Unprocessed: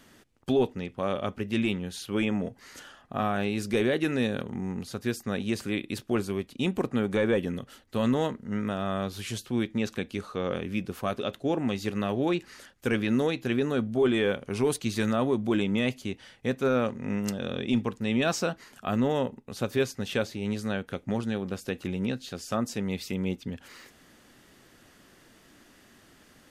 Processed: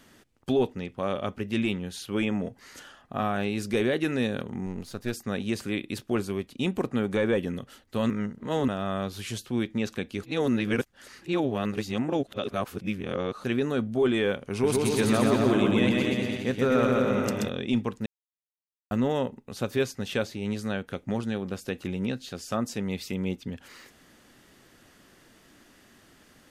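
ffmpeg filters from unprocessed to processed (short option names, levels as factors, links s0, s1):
-filter_complex "[0:a]asettb=1/sr,asplit=3[s0][s1][s2];[s0]atrim=end=4.664[s3];[s1]atrim=start=4.66:end=5.13,asetpts=PTS-STARTPTS,afade=t=in:d=0.004:c=qsin,afade=t=out:st=0.466:d=0.004:c=qsin,aeval=exprs='if(lt(val(0),0),0.447*val(0),val(0))':c=same[s4];[s2]atrim=start=5.126[s5];[s3][s4]acrossfade=d=0.004:c1=hsin:c2=qsin[s6];[s6][s5]acrossfade=d=0.004:c1=qsin:c2=hsin,asettb=1/sr,asplit=3[s7][s8][s9];[s7]atrim=end=14.504[s10];[s8]atrim=start=14.5:end=17.49,asetpts=PTS-STARTPTS,afade=t=in:d=0.004:c=qsin,afade=t=out:st=2.986:d=0.004:c=qsin,aecho=1:1:130|240.5|334.4|414.3|482.1|539.8:0.794|0.631|0.501|0.398|0.316|0.251,atrim=end_sample=131859[s11];[s9]atrim=start=17.486[s12];[s10][s11]acrossfade=d=0.004:c1=hsin:c2=qsin[s13];[s13][s12]acrossfade=d=0.004:c1=qsin:c2=hsin,asplit=7[s14][s15][s16][s17][s18][s19][s20];[s14]atrim=end=8.102[s21];[s15]atrim=start=8.098:end=8.682,asetpts=PTS-STARTPTS,areverse[s22];[s16]atrim=start=8.678:end=10.232[s23];[s17]atrim=start=10.228:end=13.442,asetpts=PTS-STARTPTS,areverse[s24];[s18]atrim=start=13.438:end=18.06,asetpts=PTS-STARTPTS,afade=t=out:st=4.618:d=0.004:c=hsin[s25];[s19]atrim=start=18.06:end=18.91,asetpts=PTS-STARTPTS,volume=0[s26];[s20]atrim=start=18.91,asetpts=PTS-STARTPTS,afade=t=in:d=0.004:c=hsin[s27];[s21][s22]acrossfade=d=0.004:c1=hsin:c2=hsin[s28];[s28][s23]acrossfade=d=0.004:c1=hsin:c2=hsin[s29];[s29][s24]acrossfade=d=0.004:c1=hsin:c2=hsin[s30];[s25][s26][s27]concat=n=3:v=0:a=1[s31];[s30][s31]acrossfade=d=0.004:c1=hsin:c2=hsin"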